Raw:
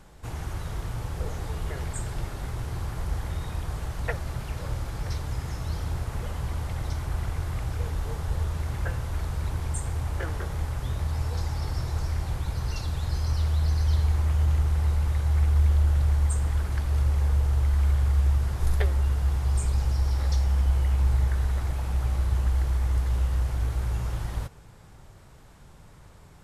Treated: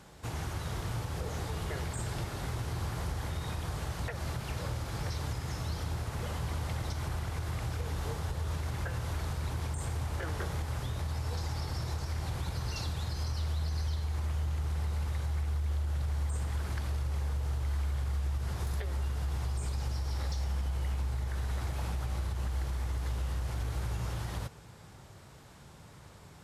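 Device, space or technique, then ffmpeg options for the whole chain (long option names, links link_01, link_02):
broadcast voice chain: -af "highpass=75,deesser=0.85,acompressor=threshold=-27dB:ratio=6,equalizer=frequency=4400:width_type=o:width=1.4:gain=3,alimiter=level_in=2dB:limit=-24dB:level=0:latency=1:release=120,volume=-2dB"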